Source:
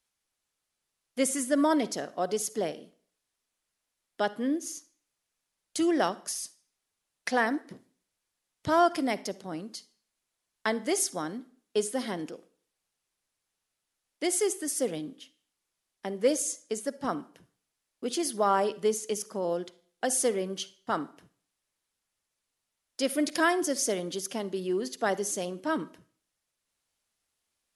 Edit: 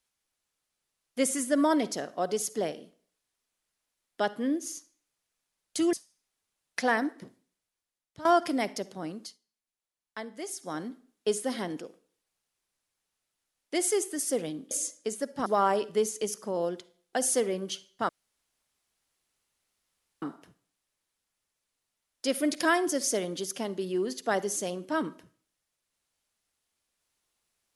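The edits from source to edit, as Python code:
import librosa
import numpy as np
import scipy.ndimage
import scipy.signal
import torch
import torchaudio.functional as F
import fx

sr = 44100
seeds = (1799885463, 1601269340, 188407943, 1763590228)

y = fx.edit(x, sr, fx.cut(start_s=5.93, length_s=0.49),
    fx.fade_out_to(start_s=7.69, length_s=1.05, floor_db=-17.0),
    fx.fade_down_up(start_s=9.7, length_s=1.57, db=-10.5, fade_s=0.18),
    fx.cut(start_s=15.2, length_s=1.16),
    fx.cut(start_s=17.11, length_s=1.23),
    fx.insert_room_tone(at_s=20.97, length_s=2.13), tone=tone)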